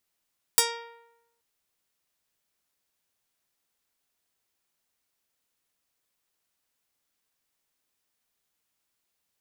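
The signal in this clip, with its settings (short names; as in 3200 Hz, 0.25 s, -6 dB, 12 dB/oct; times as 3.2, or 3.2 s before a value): plucked string A#4, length 0.83 s, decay 0.92 s, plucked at 0.22, medium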